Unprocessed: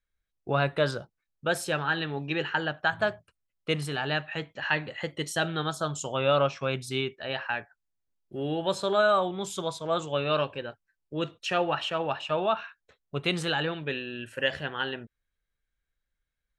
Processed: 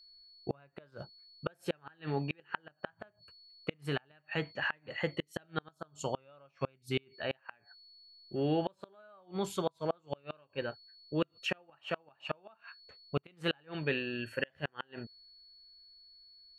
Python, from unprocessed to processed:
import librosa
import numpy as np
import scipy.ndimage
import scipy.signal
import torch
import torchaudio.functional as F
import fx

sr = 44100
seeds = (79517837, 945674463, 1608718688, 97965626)

y = fx.band_shelf(x, sr, hz=5700.0, db=-8.5, octaves=1.7)
y = y + 10.0 ** (-56.0 / 20.0) * np.sin(2.0 * np.pi * 4400.0 * np.arange(len(y)) / sr)
y = fx.gate_flip(y, sr, shuts_db=-19.0, range_db=-35)